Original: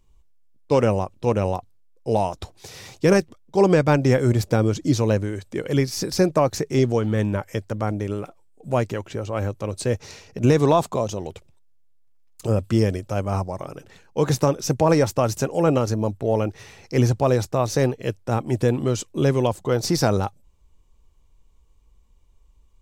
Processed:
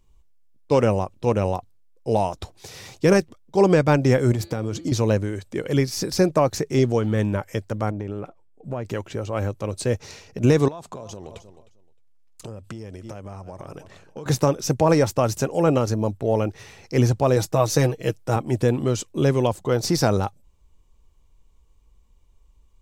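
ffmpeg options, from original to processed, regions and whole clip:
-filter_complex "[0:a]asettb=1/sr,asplit=3[a][b][c];[a]atrim=end=4.324[d];[b]atrim=start=4.32:end=4.92,asetpts=PTS-STARTPTS,afade=t=in:d=0.004:c=qsin,afade=t=out:st=0.596:d=0.004:c=qsin,highpass=58,bandreject=f=169.5:t=h:w=4,bandreject=f=339:t=h:w=4,bandreject=f=508.5:t=h:w=4,bandreject=f=678:t=h:w=4,bandreject=f=847.5:t=h:w=4,bandreject=f=1.017k:t=h:w=4,bandreject=f=1.1865k:t=h:w=4,bandreject=f=1.356k:t=h:w=4,bandreject=f=1.5255k:t=h:w=4,bandreject=f=1.695k:t=h:w=4,bandreject=f=1.8645k:t=h:w=4,bandreject=f=2.034k:t=h:w=4,bandreject=f=2.2035k:t=h:w=4,bandreject=f=2.373k:t=h:w=4,bandreject=f=2.5425k:t=h:w=4,bandreject=f=2.712k:t=h:w=4,bandreject=f=2.8815k:t=h:w=4,bandreject=f=3.051k:t=h:w=4,bandreject=f=3.2205k:t=h:w=4,bandreject=f=3.39k:t=h:w=4,bandreject=f=3.5595k:t=h:w=4,bandreject=f=3.729k:t=h:w=4,bandreject=f=3.8985k:t=h:w=4,bandreject=f=4.068k:t=h:w=4,bandreject=f=4.2375k:t=h:w=4,bandreject=f=4.407k:t=h:w=4,bandreject=f=4.5765k:t=h:w=4,acompressor=threshold=-20dB:ratio=10:attack=3.2:release=140:knee=1:detection=peak[e];[c]atrim=start=4.916[f];[d][e]acrossfade=d=0.004:c1=hsin:c2=qsin[g];[g][f]acrossfade=d=0.004:c1=qsin:c2=hsin,asettb=1/sr,asplit=3[h][i][j];[h]atrim=end=7.904[k];[i]atrim=start=7.9:end=8.85,asetpts=PTS-STARTPTS,afade=t=in:d=0.004:c=qsin,afade=t=out:st=0.946:d=0.004:c=qsin,lowpass=f=1.7k:p=1,acompressor=threshold=-24dB:ratio=6:attack=3.2:release=140:knee=1:detection=peak[l];[j]atrim=start=8.846[m];[k][l]acrossfade=d=0.004:c1=hsin:c2=qsin[n];[n][m]acrossfade=d=0.004:c1=qsin:c2=hsin,asettb=1/sr,asplit=3[o][p][q];[o]atrim=end=10.684[r];[p]atrim=start=10.68:end=14.26,asetpts=PTS-STARTPTS,afade=t=in:d=0.004:c=qsin,afade=t=out:st=3.576:d=0.004:c=qsin,lowpass=12k,aecho=1:1:309|618:0.1|0.016,atrim=end_sample=157878,acompressor=threshold=-31dB:ratio=16:attack=3.2:release=140:knee=1:detection=peak[s];[q]atrim=start=14.256[t];[r][s]acrossfade=d=0.004:c1=hsin:c2=qsin[u];[u][t]acrossfade=d=0.004:c1=qsin:c2=hsin,asettb=1/sr,asplit=3[v][w][x];[v]atrim=end=17.364[y];[w]atrim=start=17.36:end=18.36,asetpts=PTS-STARTPTS,afade=t=in:d=0.004:c=qsin,afade=t=out:st=0.996:d=0.004:c=qsin,highshelf=f=6.2k:g=5.5,aecho=1:1:6.3:0.57,atrim=end_sample=44100[z];[x]atrim=start=18.356[aa];[y][z]acrossfade=d=0.004:c1=hsin:c2=qsin[ab];[ab][aa]acrossfade=d=0.004:c1=qsin:c2=hsin"

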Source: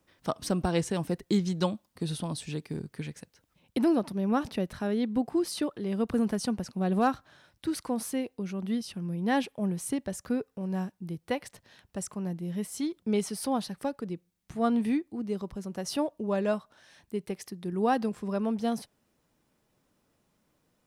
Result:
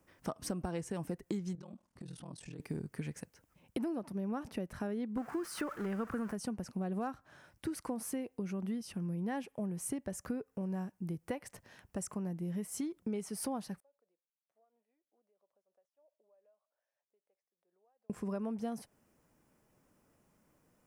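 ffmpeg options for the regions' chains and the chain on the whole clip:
-filter_complex "[0:a]asettb=1/sr,asplit=3[a][b][c];[a]atrim=end=1.554[d];[b]atrim=start=1.55:end=2.6,asetpts=PTS-STARTPTS,afade=t=in:d=0.004:c=qsin,afade=t=out:st=1.046:d=0.004:c=qsin,lowpass=8.2k,acompressor=threshold=-41dB:ratio=20:attack=3.2:release=140:knee=1:detection=peak,aeval=exprs='val(0)*sin(2*PI*20*n/s)':c=same[e];[c]atrim=start=2.596[f];[d][e]acrossfade=d=0.004:c1=hsin:c2=qsin[g];[g][f]acrossfade=d=0.004:c1=qsin:c2=hsin,asettb=1/sr,asplit=3[h][i][j];[h]atrim=end=5.174[k];[i]atrim=start=5.17:end=6.33,asetpts=PTS-STARTPTS,afade=t=in:d=0.004:c=qsin,afade=t=out:st=1.156:d=0.004:c=qsin,aeval=exprs='val(0)+0.5*0.0112*sgn(val(0))':c=same,equalizer=f=1.4k:w=1.5:g=14.5,agate=range=-33dB:threshold=-32dB:ratio=3:release=100:detection=peak[l];[j]atrim=start=6.326[m];[k][l]acrossfade=d=0.004:c1=hsin:c2=qsin[n];[n][m]acrossfade=d=0.004:c1=qsin:c2=hsin,asettb=1/sr,asplit=3[o][p][q];[o]atrim=end=13.804[r];[p]atrim=start=13.8:end=18.1,asetpts=PTS-STARTPTS,afade=t=in:d=0.004:c=qsin,afade=t=out:st=4.296:d=0.004:c=qsin,aderivative,acompressor=threshold=-60dB:ratio=20:attack=3.2:release=140:knee=1:detection=peak,bandpass=f=580:t=q:w=4.7[s];[q]atrim=start=18.096[t];[r][s]acrossfade=d=0.004:c1=hsin:c2=qsin[u];[u][t]acrossfade=d=0.004:c1=qsin:c2=hsin,equalizer=f=3.8k:t=o:w=0.74:g=-10,acompressor=threshold=-36dB:ratio=6,volume=1dB"

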